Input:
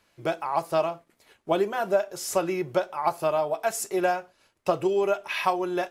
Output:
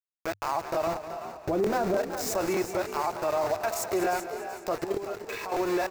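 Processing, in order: opening faded in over 0.61 s; 0.87–1.96 tilt -4.5 dB/oct; sample gate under -31.5 dBFS; in parallel at +2.5 dB: compressor 10:1, threshold -35 dBFS, peak gain reduction 21.5 dB; on the sum: limiter -19 dBFS, peak gain reduction 12.5 dB; 4.84–5.52 level quantiser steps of 12 dB; thirty-one-band EQ 100 Hz +11 dB, 160 Hz -8 dB, 3150 Hz -10 dB, 10000 Hz -9 dB; frequency-shifting echo 0.378 s, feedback 34%, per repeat +61 Hz, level -11.5 dB; crackling interface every 0.30 s, samples 1024, repeat, from 0.42; warbling echo 0.201 s, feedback 60%, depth 50 cents, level -12 dB

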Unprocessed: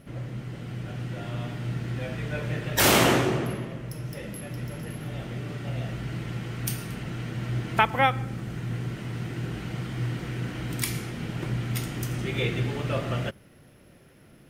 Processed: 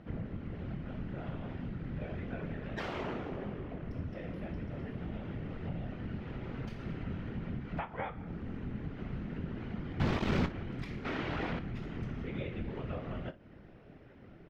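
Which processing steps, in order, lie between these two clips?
6.15–6.8 minimum comb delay 6.5 ms; high shelf 3200 Hz -8.5 dB; compressor 5:1, threshold -37 dBFS, peak gain reduction 18 dB; 10–10.46 companded quantiser 2-bit; 11.05–11.59 overdrive pedal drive 28 dB, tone 4500 Hz, clips at -28 dBFS; whisperiser; air absorption 210 m; on a send: early reflections 24 ms -11.5 dB, 58 ms -17.5 dB

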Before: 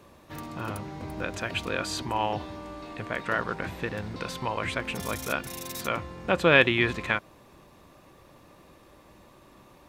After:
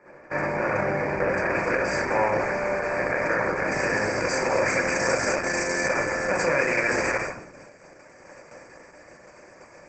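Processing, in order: per-bin compression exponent 0.4; Chebyshev band-stop 2300–4800 Hz, order 3; gate -27 dBFS, range -22 dB; tone controls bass -2 dB, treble -14 dB, from 1.63 s treble -6 dB, from 3.7 s treble +6 dB; limiter -10 dBFS, peak gain reduction 7 dB; low shelf 470 Hz -7.5 dB; reverb RT60 0.65 s, pre-delay 6 ms, DRR -0.5 dB; gain -1 dB; Opus 12 kbps 48000 Hz

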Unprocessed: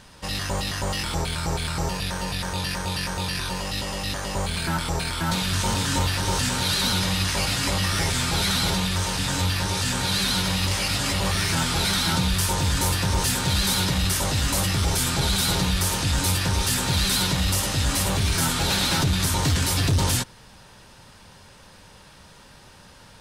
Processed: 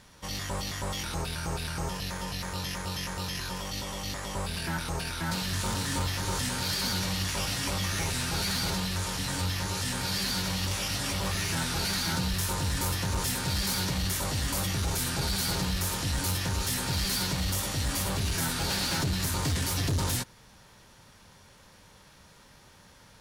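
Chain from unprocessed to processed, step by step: formant shift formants +2 st; one-sided clip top -18.5 dBFS; gain -6.5 dB

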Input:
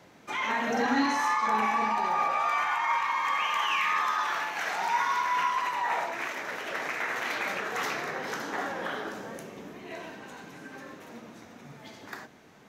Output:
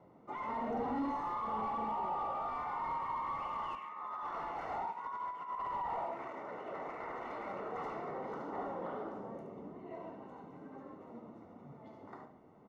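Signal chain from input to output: 3.75–5.85 negative-ratio compressor -31 dBFS, ratio -0.5; echo 72 ms -11 dB; hard clip -27.5 dBFS, distortion -10 dB; polynomial smoothing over 65 samples; speakerphone echo 0.14 s, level -17 dB; gain -4.5 dB

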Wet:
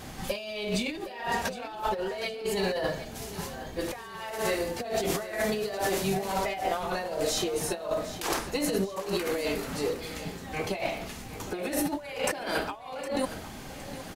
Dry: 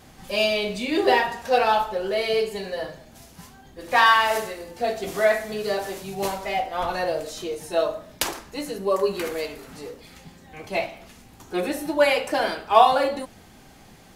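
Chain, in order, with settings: negative-ratio compressor -33 dBFS, ratio -1; feedback echo 0.763 s, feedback 45%, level -14 dB

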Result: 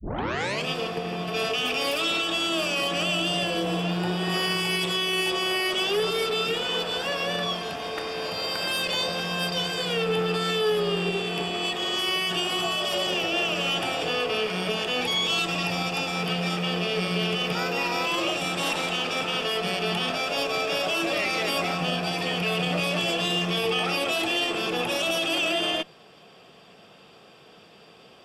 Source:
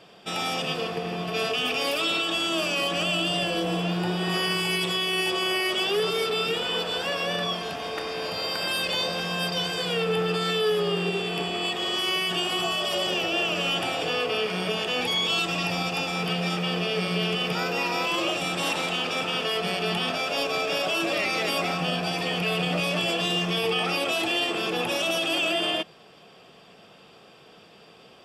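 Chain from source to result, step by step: tape start at the beginning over 0.67 s; added harmonics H 4 -25 dB, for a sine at -14 dBFS

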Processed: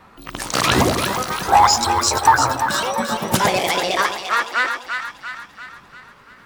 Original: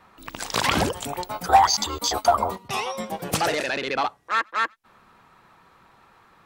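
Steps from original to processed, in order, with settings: repeated pitch sweeps +7 st, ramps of 1.414 s; low shelf 410 Hz +4 dB; split-band echo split 820 Hz, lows 0.109 s, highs 0.343 s, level -6 dB; gain +5.5 dB

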